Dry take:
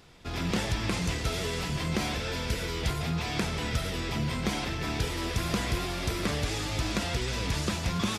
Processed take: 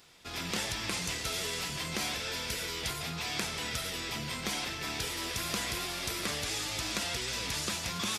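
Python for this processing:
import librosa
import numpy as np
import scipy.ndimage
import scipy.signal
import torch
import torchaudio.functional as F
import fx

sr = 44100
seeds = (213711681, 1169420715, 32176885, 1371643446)

y = fx.tilt_eq(x, sr, slope=2.5)
y = y * librosa.db_to_amplitude(-4.0)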